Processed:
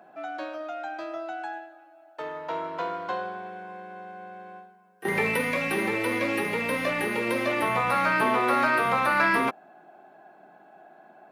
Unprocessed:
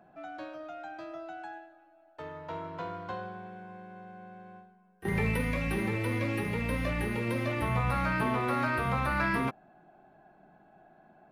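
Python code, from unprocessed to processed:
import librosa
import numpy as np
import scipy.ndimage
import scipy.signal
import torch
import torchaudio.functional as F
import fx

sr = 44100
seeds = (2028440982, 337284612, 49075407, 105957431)

y = scipy.signal.sosfilt(scipy.signal.butter(2, 330.0, 'highpass', fs=sr, output='sos'), x)
y = y * librosa.db_to_amplitude(8.0)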